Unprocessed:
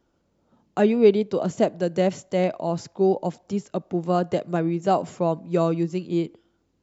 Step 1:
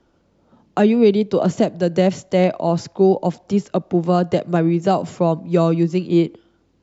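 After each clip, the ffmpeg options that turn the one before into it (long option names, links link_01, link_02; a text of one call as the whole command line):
ffmpeg -i in.wav -filter_complex "[0:a]lowpass=6100,acrossover=split=220|3500[link_01][link_02][link_03];[link_02]alimiter=limit=-16.5dB:level=0:latency=1:release=462[link_04];[link_01][link_04][link_03]amix=inputs=3:normalize=0,volume=8.5dB" out.wav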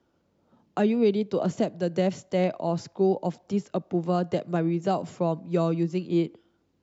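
ffmpeg -i in.wav -af "highpass=66,volume=-8.5dB" out.wav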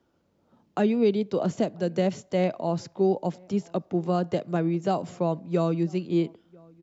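ffmpeg -i in.wav -filter_complex "[0:a]asplit=2[link_01][link_02];[link_02]adelay=991.3,volume=-27dB,highshelf=frequency=4000:gain=-22.3[link_03];[link_01][link_03]amix=inputs=2:normalize=0" out.wav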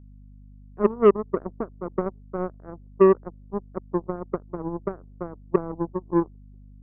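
ffmpeg -i in.wav -af "lowpass=frequency=400:width_type=q:width=3.4,aeval=exprs='0.596*(cos(1*acos(clip(val(0)/0.596,-1,1)))-cos(1*PI/2))+0.15*(cos(3*acos(clip(val(0)/0.596,-1,1)))-cos(3*PI/2))+0.0188*(cos(7*acos(clip(val(0)/0.596,-1,1)))-cos(7*PI/2))+0.00422*(cos(8*acos(clip(val(0)/0.596,-1,1)))-cos(8*PI/2))':channel_layout=same,aeval=exprs='val(0)+0.00501*(sin(2*PI*50*n/s)+sin(2*PI*2*50*n/s)/2+sin(2*PI*3*50*n/s)/3+sin(2*PI*4*50*n/s)/4+sin(2*PI*5*50*n/s)/5)':channel_layout=same" out.wav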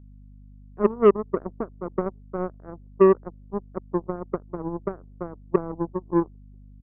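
ffmpeg -i in.wav -af "aresample=8000,aresample=44100" out.wav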